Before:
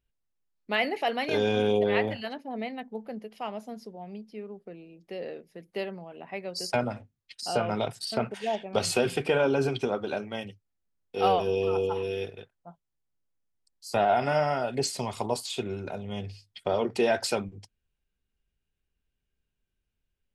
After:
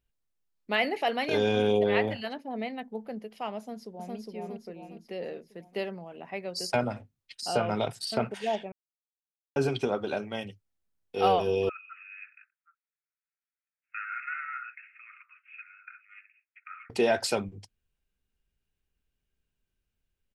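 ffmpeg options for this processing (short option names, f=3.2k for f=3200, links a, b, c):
-filter_complex "[0:a]asplit=2[a][b];[b]afade=t=in:st=3.58:d=0.01,afade=t=out:st=4.15:d=0.01,aecho=0:1:410|820|1230|1640|2050|2460|2870:0.944061|0.47203|0.236015|0.118008|0.0590038|0.0295019|0.014751[c];[a][c]amix=inputs=2:normalize=0,asettb=1/sr,asplit=3[d][e][f];[d]atrim=end=11.694[g];[e]atrim=start=11.69:end=16.9,asetpts=PTS-STARTPTS,afade=t=in:d=0.004:c=qsin,afade=t=out:st=5.206:d=0.004:c=qsin,asuperpass=centerf=1800:order=20:qfactor=1.3[h];[f]atrim=start=16.896[i];[g][h]acrossfade=d=0.004:c1=hsin:c2=qsin[j];[j][i]acrossfade=d=0.004:c1=qsin:c2=hsin,asplit=3[k][l][m];[k]atrim=end=8.72,asetpts=PTS-STARTPTS,afade=t=out:st=8.716:d=0.004:c=hsin[n];[l]atrim=start=8.72:end=9.56,asetpts=PTS-STARTPTS,volume=0[o];[m]atrim=start=9.56,asetpts=PTS-STARTPTS,afade=t=in:d=0.004:c=hsin[p];[n][o][p]concat=n=3:v=0:a=1"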